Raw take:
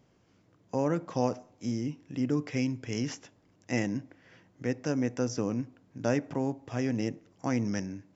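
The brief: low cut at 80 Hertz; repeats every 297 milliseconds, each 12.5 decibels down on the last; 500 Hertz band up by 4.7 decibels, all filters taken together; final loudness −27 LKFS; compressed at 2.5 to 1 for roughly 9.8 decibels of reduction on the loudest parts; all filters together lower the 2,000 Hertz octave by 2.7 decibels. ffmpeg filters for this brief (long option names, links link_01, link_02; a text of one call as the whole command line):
ffmpeg -i in.wav -af "highpass=80,equalizer=frequency=500:width_type=o:gain=5.5,equalizer=frequency=2000:width_type=o:gain=-3.5,acompressor=threshold=-35dB:ratio=2.5,aecho=1:1:297|594|891:0.237|0.0569|0.0137,volume=11dB" out.wav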